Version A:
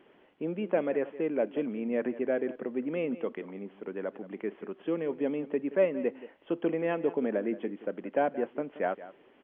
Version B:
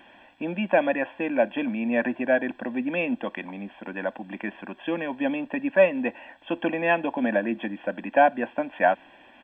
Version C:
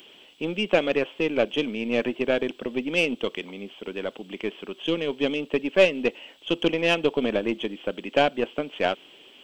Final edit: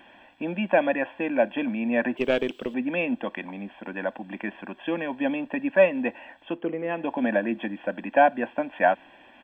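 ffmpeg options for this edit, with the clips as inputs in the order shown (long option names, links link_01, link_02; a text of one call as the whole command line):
ffmpeg -i take0.wav -i take1.wav -i take2.wav -filter_complex "[1:a]asplit=3[link_01][link_02][link_03];[link_01]atrim=end=2.172[link_04];[2:a]atrim=start=2.168:end=2.742[link_05];[link_02]atrim=start=2.738:end=6.64[link_06];[0:a]atrim=start=6.4:end=7.12[link_07];[link_03]atrim=start=6.88[link_08];[link_04][link_05]acrossfade=duration=0.004:curve1=hsin:curve2=hsin[link_09];[link_09][link_06]acrossfade=duration=0.004:curve1=hsin:curve2=hsin[link_10];[link_10][link_07]acrossfade=duration=0.24:curve1=tri:curve2=tri[link_11];[link_11][link_08]acrossfade=duration=0.24:curve1=tri:curve2=tri" out.wav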